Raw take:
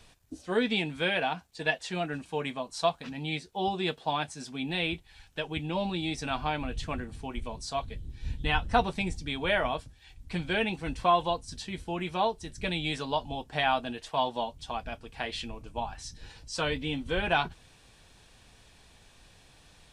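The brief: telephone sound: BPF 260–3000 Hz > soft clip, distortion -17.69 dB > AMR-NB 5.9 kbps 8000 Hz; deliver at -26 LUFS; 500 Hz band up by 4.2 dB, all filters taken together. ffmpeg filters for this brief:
-af "highpass=260,lowpass=3k,equalizer=f=500:t=o:g=6,asoftclip=threshold=-16dB,volume=6.5dB" -ar 8000 -c:a libopencore_amrnb -b:a 5900

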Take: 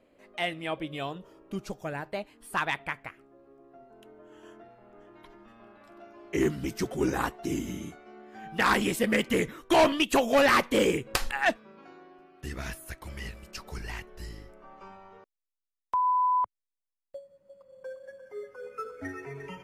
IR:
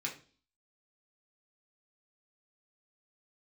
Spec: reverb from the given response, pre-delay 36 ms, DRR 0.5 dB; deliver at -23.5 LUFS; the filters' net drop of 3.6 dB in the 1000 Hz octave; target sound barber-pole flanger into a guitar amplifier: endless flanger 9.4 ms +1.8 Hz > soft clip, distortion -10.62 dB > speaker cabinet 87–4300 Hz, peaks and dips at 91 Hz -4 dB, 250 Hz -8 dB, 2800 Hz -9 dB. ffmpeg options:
-filter_complex "[0:a]equalizer=f=1k:t=o:g=-4,asplit=2[a][b];[1:a]atrim=start_sample=2205,adelay=36[c];[b][c]afir=irnorm=-1:irlink=0,volume=-2.5dB[d];[a][d]amix=inputs=2:normalize=0,asplit=2[e][f];[f]adelay=9.4,afreqshift=1.8[g];[e][g]amix=inputs=2:normalize=1,asoftclip=threshold=-25dB,highpass=87,equalizer=f=91:t=q:w=4:g=-4,equalizer=f=250:t=q:w=4:g=-8,equalizer=f=2.8k:t=q:w=4:g=-9,lowpass=f=4.3k:w=0.5412,lowpass=f=4.3k:w=1.3066,volume=12.5dB"

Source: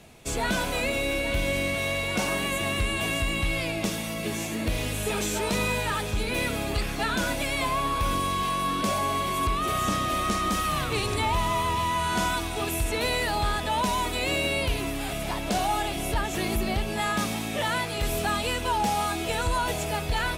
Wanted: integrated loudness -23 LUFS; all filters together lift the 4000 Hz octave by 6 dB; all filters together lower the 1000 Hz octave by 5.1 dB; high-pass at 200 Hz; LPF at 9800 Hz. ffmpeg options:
-af "highpass=200,lowpass=9.8k,equalizer=f=1k:t=o:g=-6.5,equalizer=f=4k:t=o:g=8,volume=3.5dB"

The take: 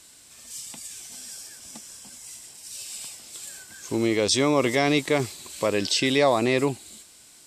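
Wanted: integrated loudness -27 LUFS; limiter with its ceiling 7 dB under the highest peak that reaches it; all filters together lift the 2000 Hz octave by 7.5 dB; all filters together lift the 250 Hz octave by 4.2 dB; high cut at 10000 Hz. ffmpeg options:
-af "lowpass=10k,equalizer=f=250:t=o:g=5,equalizer=f=2k:t=o:g=8.5,volume=-4dB,alimiter=limit=-15dB:level=0:latency=1"

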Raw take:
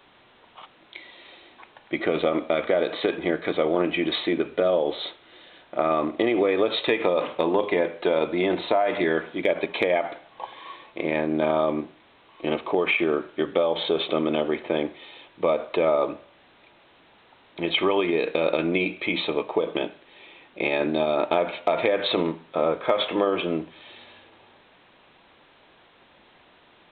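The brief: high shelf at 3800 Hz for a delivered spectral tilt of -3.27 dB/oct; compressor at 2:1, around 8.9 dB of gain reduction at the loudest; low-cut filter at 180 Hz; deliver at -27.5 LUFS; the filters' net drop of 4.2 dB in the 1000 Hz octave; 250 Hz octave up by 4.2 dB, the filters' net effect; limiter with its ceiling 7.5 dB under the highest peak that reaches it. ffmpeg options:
-af "highpass=180,equalizer=f=250:t=o:g=7.5,equalizer=f=1k:t=o:g=-6.5,highshelf=f=3.8k:g=-5,acompressor=threshold=-33dB:ratio=2,volume=6dB,alimiter=limit=-16dB:level=0:latency=1"

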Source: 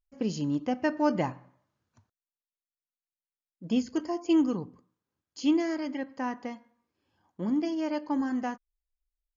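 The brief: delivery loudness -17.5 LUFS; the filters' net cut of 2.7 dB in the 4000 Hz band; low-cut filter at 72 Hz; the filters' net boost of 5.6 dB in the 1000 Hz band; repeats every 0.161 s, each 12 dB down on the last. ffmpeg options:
-af "highpass=72,equalizer=f=1k:t=o:g=7,equalizer=f=4k:t=o:g=-4.5,aecho=1:1:161|322|483:0.251|0.0628|0.0157,volume=11dB"

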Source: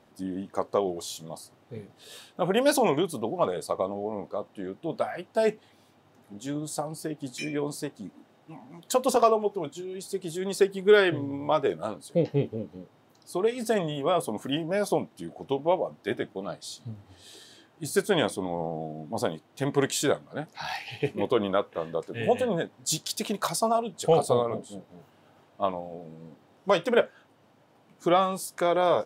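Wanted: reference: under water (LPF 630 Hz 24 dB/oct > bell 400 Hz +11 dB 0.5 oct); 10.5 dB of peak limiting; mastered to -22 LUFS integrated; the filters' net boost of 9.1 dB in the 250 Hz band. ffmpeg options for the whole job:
-af "equalizer=f=250:t=o:g=7.5,alimiter=limit=-16.5dB:level=0:latency=1,lowpass=f=630:w=0.5412,lowpass=f=630:w=1.3066,equalizer=f=400:t=o:w=0.5:g=11,volume=2.5dB"

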